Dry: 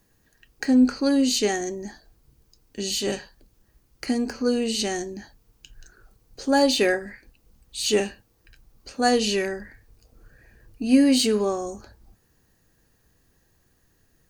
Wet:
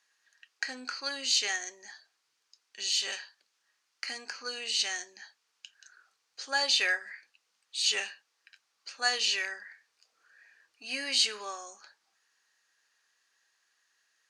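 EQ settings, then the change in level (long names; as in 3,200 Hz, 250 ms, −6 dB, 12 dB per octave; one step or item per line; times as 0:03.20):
flat-topped band-pass 3,000 Hz, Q 0.56
0.0 dB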